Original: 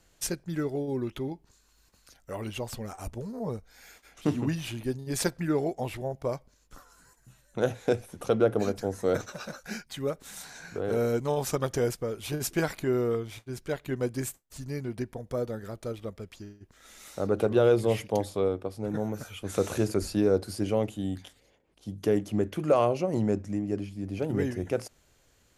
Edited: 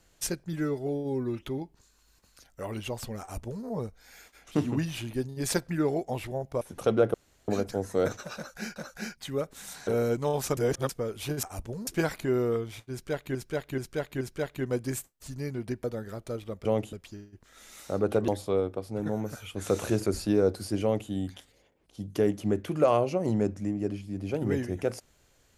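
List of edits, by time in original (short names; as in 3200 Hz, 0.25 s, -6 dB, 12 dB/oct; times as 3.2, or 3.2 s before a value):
0.53–1.13 stretch 1.5×
2.91–3.35 copy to 12.46
6.31–8.04 cut
8.57 insert room tone 0.34 s
9.45–9.85 loop, 2 plays
10.56–10.9 cut
11.6–11.92 reverse
13.51–13.94 loop, 4 plays
15.14–15.4 cut
17.56–18.16 cut
20.7–20.98 copy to 16.21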